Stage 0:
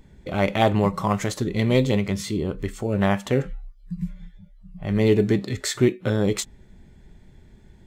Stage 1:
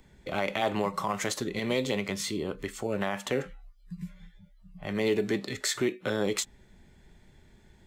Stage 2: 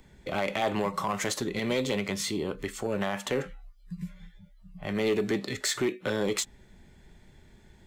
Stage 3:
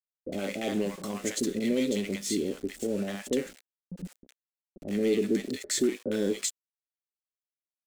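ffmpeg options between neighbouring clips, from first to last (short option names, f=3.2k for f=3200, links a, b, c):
-filter_complex "[0:a]lowshelf=f=470:g=-8.5,acrossover=split=170|740|2500[a][b][c][d];[a]acompressor=threshold=-44dB:ratio=6[e];[e][b][c][d]amix=inputs=4:normalize=0,alimiter=limit=-17.5dB:level=0:latency=1:release=60"
-af "asoftclip=type=tanh:threshold=-21dB,volume=2dB"
-filter_complex "[0:a]aeval=exprs='val(0)*gte(abs(val(0)),0.0112)':c=same,equalizer=f=125:t=o:w=1:g=-8,equalizer=f=250:t=o:w=1:g=11,equalizer=f=500:t=o:w=1:g=5,equalizer=f=1k:t=o:w=1:g=-11,equalizer=f=8k:t=o:w=1:g=6,acrossover=split=740[a][b];[b]adelay=60[c];[a][c]amix=inputs=2:normalize=0,volume=-4dB"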